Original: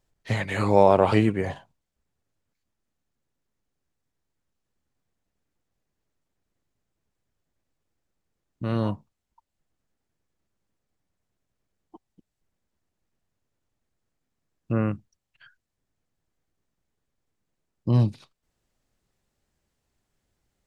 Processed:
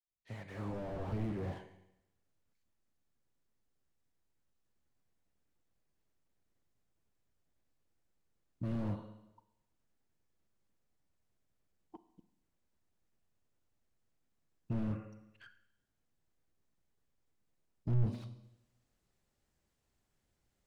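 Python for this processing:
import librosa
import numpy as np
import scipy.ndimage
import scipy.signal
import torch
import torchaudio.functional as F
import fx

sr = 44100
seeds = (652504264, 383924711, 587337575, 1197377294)

y = fx.fade_in_head(x, sr, length_s=1.96)
y = fx.rev_schroeder(y, sr, rt60_s=0.87, comb_ms=33, drr_db=13.5)
y = fx.slew_limit(y, sr, full_power_hz=7.9)
y = F.gain(torch.from_numpy(y), -4.5).numpy()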